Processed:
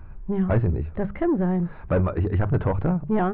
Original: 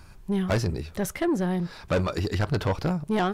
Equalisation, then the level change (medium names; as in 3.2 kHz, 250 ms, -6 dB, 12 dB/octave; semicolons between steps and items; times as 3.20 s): Gaussian low-pass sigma 4.4 samples; bass shelf 93 Hz +10 dB; hum notches 50/100/150/200 Hz; +2.0 dB